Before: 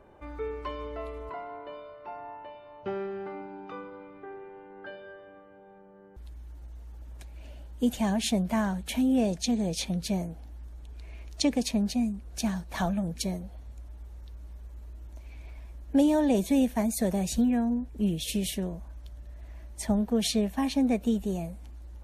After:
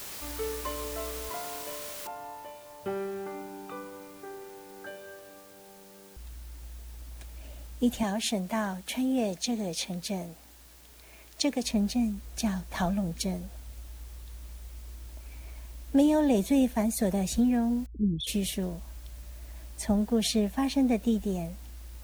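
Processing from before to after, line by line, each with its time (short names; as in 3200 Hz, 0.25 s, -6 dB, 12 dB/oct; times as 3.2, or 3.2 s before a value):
2.07 noise floor step -41 dB -56 dB
8.03–11.64 HPF 300 Hz 6 dB/oct
17.86–18.27 formant sharpening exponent 3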